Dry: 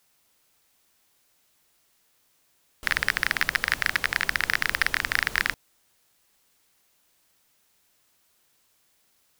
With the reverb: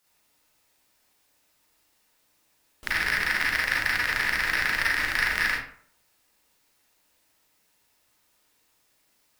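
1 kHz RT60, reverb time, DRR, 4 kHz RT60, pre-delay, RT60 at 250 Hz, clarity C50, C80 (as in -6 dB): 0.55 s, 0.55 s, -6.0 dB, 0.35 s, 33 ms, 0.55 s, 1.0 dB, 7.0 dB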